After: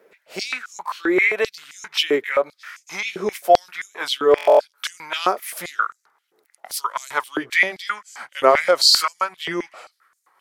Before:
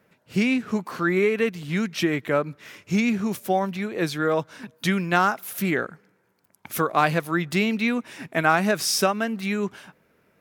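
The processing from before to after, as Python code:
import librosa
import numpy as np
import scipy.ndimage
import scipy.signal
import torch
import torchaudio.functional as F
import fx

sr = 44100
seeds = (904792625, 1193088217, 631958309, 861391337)

y = fx.pitch_glide(x, sr, semitones=-3.5, runs='starting unshifted')
y = fx.notch(y, sr, hz=2800.0, q=25.0)
y = fx.buffer_glitch(y, sr, at_s=(4.36,), block=1024, repeats=9)
y = fx.filter_held_highpass(y, sr, hz=7.6, low_hz=420.0, high_hz=6700.0)
y = y * 10.0 ** (3.0 / 20.0)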